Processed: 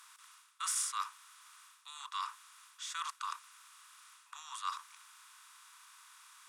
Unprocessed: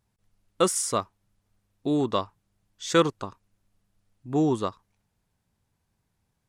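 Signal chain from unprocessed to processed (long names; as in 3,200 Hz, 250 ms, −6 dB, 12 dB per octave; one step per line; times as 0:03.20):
compressor on every frequency bin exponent 0.6
reversed playback
downward compressor 12 to 1, threshold −30 dBFS, peak gain reduction 17 dB
reversed playback
Butterworth high-pass 980 Hz 72 dB per octave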